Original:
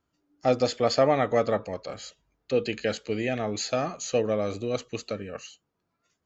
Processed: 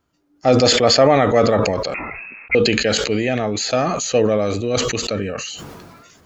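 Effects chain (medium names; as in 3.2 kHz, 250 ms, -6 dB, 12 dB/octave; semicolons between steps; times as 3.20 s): 1.94–2.55 s: frequency inversion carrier 2.6 kHz; decay stretcher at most 29 dB/s; trim +7.5 dB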